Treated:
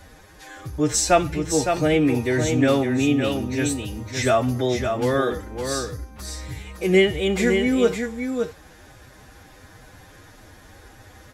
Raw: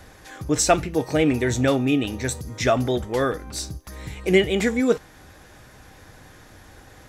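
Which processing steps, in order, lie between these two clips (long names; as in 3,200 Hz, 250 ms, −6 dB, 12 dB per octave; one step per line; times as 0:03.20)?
phase-vocoder stretch with locked phases 1.6×
single-tap delay 561 ms −6 dB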